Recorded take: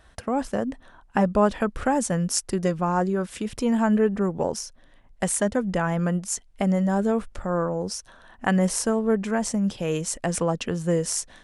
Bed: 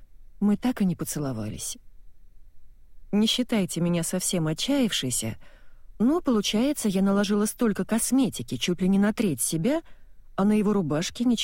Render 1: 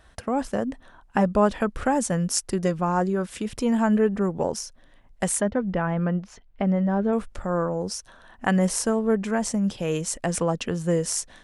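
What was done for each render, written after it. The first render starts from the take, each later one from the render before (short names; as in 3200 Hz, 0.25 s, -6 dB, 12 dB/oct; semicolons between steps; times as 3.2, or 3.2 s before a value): 5.41–7.13 air absorption 280 m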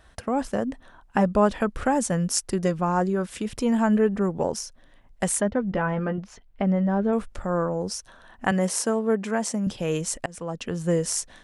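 5.7–6.18 doubler 14 ms -5.5 dB; 8.51–9.67 HPF 200 Hz; 10.26–10.87 fade in, from -24 dB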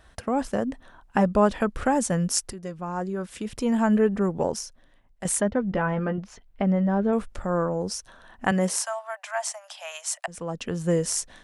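2.53–3.92 fade in, from -14.5 dB; 4.5–5.25 fade out, to -11 dB; 8.77–10.28 steep high-pass 610 Hz 96 dB/oct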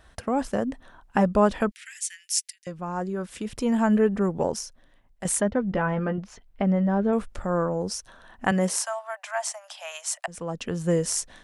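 1.71–2.67 steep high-pass 1900 Hz 48 dB/oct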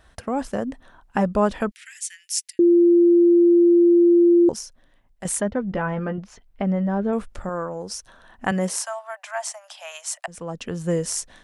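2.59–4.49 bleep 345 Hz -11 dBFS; 7.49–7.9 low shelf 440 Hz -8 dB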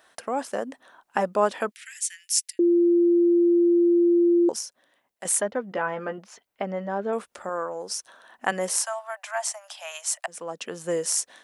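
HPF 400 Hz 12 dB/oct; high shelf 9100 Hz +6 dB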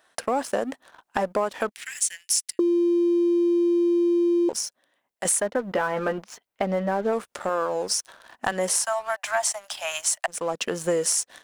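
compressor 8:1, threshold -27 dBFS, peak gain reduction 12.5 dB; sample leveller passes 2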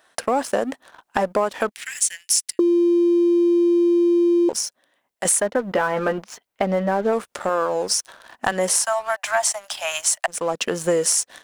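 gain +4 dB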